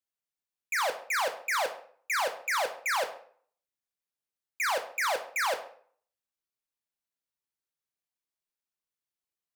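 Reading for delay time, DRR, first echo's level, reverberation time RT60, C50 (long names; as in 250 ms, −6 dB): no echo audible, 6.0 dB, no echo audible, 0.50 s, 11.5 dB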